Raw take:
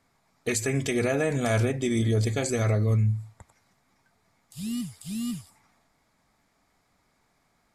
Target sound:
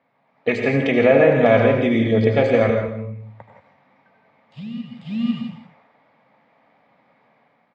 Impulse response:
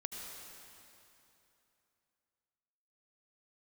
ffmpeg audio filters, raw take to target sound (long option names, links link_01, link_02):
-filter_complex "[0:a]dynaudnorm=framelen=110:gausssize=7:maxgain=6.5dB,highpass=frequency=140:width=0.5412,highpass=frequency=140:width=1.3066,equalizer=frequency=180:width_type=q:width=4:gain=-5,equalizer=frequency=370:width_type=q:width=4:gain=-8,equalizer=frequency=540:width_type=q:width=4:gain=8,equalizer=frequency=840:width_type=q:width=4:gain=3,equalizer=frequency=1400:width_type=q:width=4:gain=-5,lowpass=frequency=2900:width=0.5412,lowpass=frequency=2900:width=1.3066,asettb=1/sr,asplit=3[link_01][link_02][link_03];[link_01]atrim=end=2.704[link_04];[link_02]atrim=start=2.7:end=4.97,asetpts=PTS-STARTPTS,afade=type=in:duration=0.004:curve=qsin,afade=type=out:start_time=2.266:duration=0.004:curve=qsin,acompressor=threshold=-35dB:ratio=4[link_05];[link_03]atrim=start=4.966[link_06];[link_04][link_05]acrossfade=duration=0.004:curve1=hsin:curve2=qsin[link_07];[link_07][link_06]acrossfade=duration=0.004:curve1=qsin:curve2=hsin,asplit=2[link_08][link_09];[link_09]adelay=163.3,volume=-13dB,highshelf=frequency=4000:gain=-3.67[link_10];[link_08][link_10]amix=inputs=2:normalize=0[link_11];[1:a]atrim=start_sample=2205,afade=type=out:start_time=0.24:duration=0.01,atrim=end_sample=11025[link_12];[link_11][link_12]afir=irnorm=-1:irlink=0,volume=6.5dB"